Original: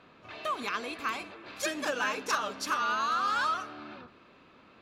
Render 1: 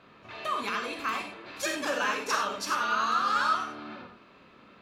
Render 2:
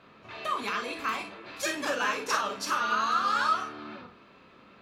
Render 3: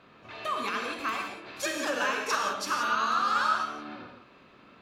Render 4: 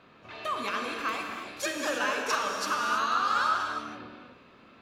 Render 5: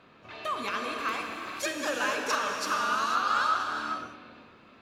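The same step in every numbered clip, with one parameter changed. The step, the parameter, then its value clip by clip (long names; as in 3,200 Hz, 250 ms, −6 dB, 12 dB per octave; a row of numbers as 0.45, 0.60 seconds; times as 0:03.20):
reverb whose tail is shaped and stops, gate: 120, 80, 200, 350, 530 milliseconds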